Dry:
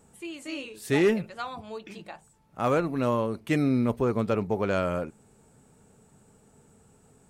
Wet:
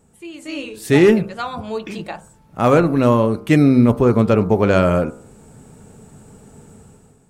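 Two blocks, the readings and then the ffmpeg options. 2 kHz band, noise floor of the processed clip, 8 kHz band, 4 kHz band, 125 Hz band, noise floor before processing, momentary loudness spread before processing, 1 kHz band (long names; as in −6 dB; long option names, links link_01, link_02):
+9.0 dB, −52 dBFS, can't be measured, +8.5 dB, +13.0 dB, −60 dBFS, 17 LU, +9.5 dB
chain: -af "lowshelf=frequency=420:gain=5,bandreject=frequency=65.08:width_type=h:width=4,bandreject=frequency=130.16:width_type=h:width=4,bandreject=frequency=195.24:width_type=h:width=4,bandreject=frequency=260.32:width_type=h:width=4,bandreject=frequency=325.4:width_type=h:width=4,bandreject=frequency=390.48:width_type=h:width=4,bandreject=frequency=455.56:width_type=h:width=4,bandreject=frequency=520.64:width_type=h:width=4,bandreject=frequency=585.72:width_type=h:width=4,bandreject=frequency=650.8:width_type=h:width=4,bandreject=frequency=715.88:width_type=h:width=4,bandreject=frequency=780.96:width_type=h:width=4,bandreject=frequency=846.04:width_type=h:width=4,bandreject=frequency=911.12:width_type=h:width=4,bandreject=frequency=976.2:width_type=h:width=4,bandreject=frequency=1041.28:width_type=h:width=4,bandreject=frequency=1106.36:width_type=h:width=4,bandreject=frequency=1171.44:width_type=h:width=4,bandreject=frequency=1236.52:width_type=h:width=4,bandreject=frequency=1301.6:width_type=h:width=4,bandreject=frequency=1366.68:width_type=h:width=4,bandreject=frequency=1431.76:width_type=h:width=4,bandreject=frequency=1496.84:width_type=h:width=4,bandreject=frequency=1561.92:width_type=h:width=4,bandreject=frequency=1627:width_type=h:width=4,dynaudnorm=framelen=110:gausssize=9:maxgain=12dB"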